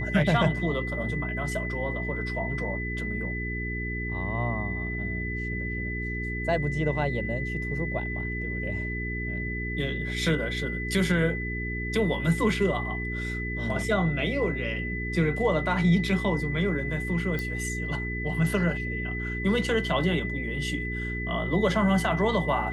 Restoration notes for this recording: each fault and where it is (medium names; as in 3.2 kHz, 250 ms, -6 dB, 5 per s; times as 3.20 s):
hum 60 Hz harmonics 7 -33 dBFS
whine 2 kHz -33 dBFS
17.39 s: pop